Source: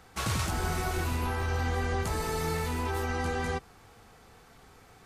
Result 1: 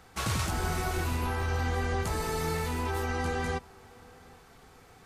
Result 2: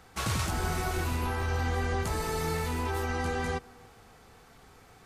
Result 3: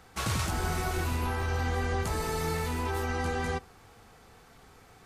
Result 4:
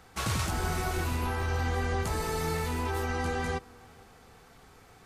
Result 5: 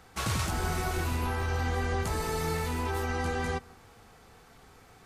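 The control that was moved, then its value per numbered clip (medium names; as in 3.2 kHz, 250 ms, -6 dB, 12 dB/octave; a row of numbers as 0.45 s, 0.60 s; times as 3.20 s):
tape echo, time: 770 ms, 290 ms, 64 ms, 449 ms, 161 ms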